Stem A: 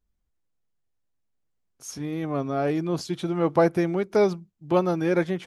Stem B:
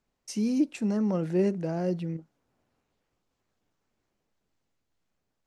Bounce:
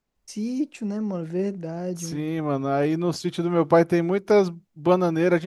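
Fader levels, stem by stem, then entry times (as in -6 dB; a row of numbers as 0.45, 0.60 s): +2.5, -1.0 dB; 0.15, 0.00 s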